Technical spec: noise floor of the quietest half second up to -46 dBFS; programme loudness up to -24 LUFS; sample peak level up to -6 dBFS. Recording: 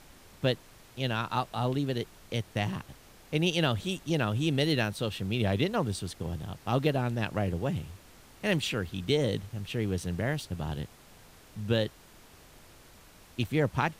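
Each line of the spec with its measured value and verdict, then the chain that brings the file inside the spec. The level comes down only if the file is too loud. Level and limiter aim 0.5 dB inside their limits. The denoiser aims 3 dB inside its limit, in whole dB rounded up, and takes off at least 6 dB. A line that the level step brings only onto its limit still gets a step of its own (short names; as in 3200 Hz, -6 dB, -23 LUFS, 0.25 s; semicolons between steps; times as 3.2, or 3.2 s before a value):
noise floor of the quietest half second -54 dBFS: OK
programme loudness -31.0 LUFS: OK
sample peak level -14.0 dBFS: OK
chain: none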